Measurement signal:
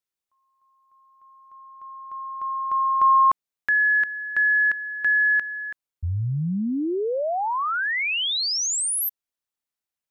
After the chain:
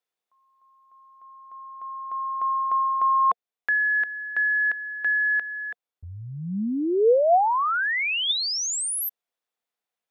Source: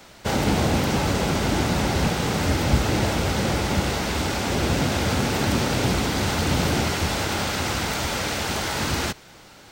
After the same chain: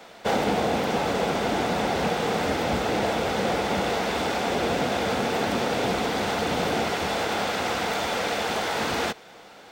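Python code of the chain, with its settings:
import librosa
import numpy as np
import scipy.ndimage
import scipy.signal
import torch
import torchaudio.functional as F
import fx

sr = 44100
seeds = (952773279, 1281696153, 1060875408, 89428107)

y = fx.bass_treble(x, sr, bass_db=-14, treble_db=-7)
y = fx.rider(y, sr, range_db=5, speed_s=0.5)
y = fx.small_body(y, sr, hz=(200.0, 470.0, 700.0, 3500.0), ring_ms=30, db=7)
y = y * librosa.db_to_amplitude(-1.0)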